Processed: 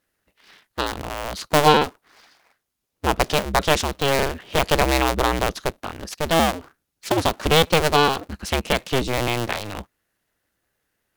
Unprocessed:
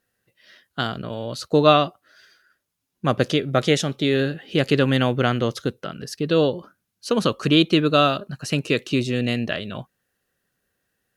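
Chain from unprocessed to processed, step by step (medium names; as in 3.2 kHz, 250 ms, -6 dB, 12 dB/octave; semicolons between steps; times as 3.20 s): cycle switcher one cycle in 2, inverted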